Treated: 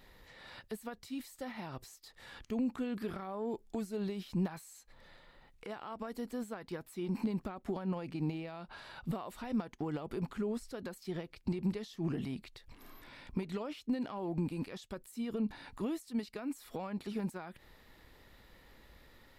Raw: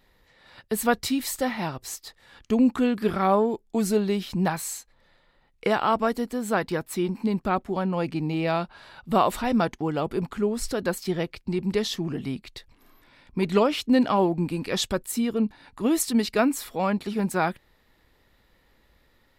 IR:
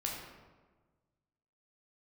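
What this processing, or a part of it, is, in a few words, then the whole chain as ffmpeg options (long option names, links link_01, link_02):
de-esser from a sidechain: -filter_complex "[0:a]asplit=2[link_01][link_02];[link_02]highpass=frequency=4600:poles=1,apad=whole_len=854711[link_03];[link_01][link_03]sidechaincompress=threshold=-56dB:ratio=8:attack=1.4:release=82,volume=3dB"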